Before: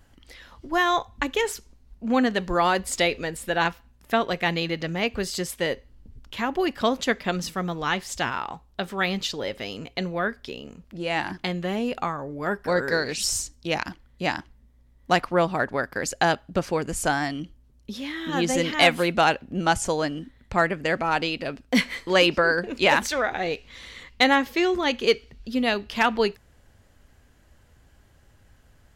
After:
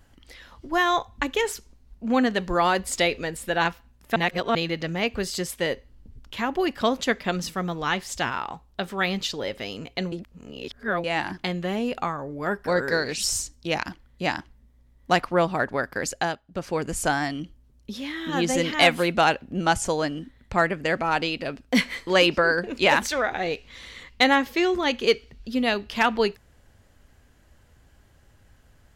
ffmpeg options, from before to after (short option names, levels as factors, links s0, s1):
-filter_complex "[0:a]asplit=7[s0][s1][s2][s3][s4][s5][s6];[s0]atrim=end=4.162[s7];[s1]atrim=start=4.158:end=4.552,asetpts=PTS-STARTPTS,areverse[s8];[s2]atrim=start=4.548:end=10.122[s9];[s3]atrim=start=10.118:end=11.042,asetpts=PTS-STARTPTS,areverse[s10];[s4]atrim=start=11.038:end=16.41,asetpts=PTS-STARTPTS,afade=t=out:st=5.022:d=0.35:silence=0.223872[s11];[s5]atrim=start=16.41:end=16.47,asetpts=PTS-STARTPTS,volume=0.224[s12];[s6]atrim=start=16.47,asetpts=PTS-STARTPTS,afade=t=in:d=0.35:silence=0.223872[s13];[s7][s8]acrossfade=d=0.004:c1=hsin:c2=hsin[s14];[s14][s9]acrossfade=d=0.004:c1=hsin:c2=hsin[s15];[s15][s10]acrossfade=d=0.004:c1=hsin:c2=hsin[s16];[s11][s12][s13]concat=n=3:v=0:a=1[s17];[s16][s17]acrossfade=d=0.004:c1=hsin:c2=hsin"